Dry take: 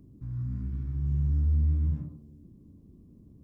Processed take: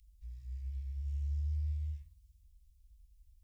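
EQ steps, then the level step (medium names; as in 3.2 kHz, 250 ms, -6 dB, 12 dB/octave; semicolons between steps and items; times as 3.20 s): inverse Chebyshev band-stop 230–530 Hz, stop band 80 dB; static phaser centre 380 Hz, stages 6; +4.0 dB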